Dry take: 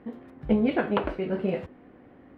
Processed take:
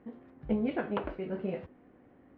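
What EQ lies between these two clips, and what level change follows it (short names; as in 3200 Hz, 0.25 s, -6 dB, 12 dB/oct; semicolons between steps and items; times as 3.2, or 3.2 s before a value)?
air absorption 150 m; -7.0 dB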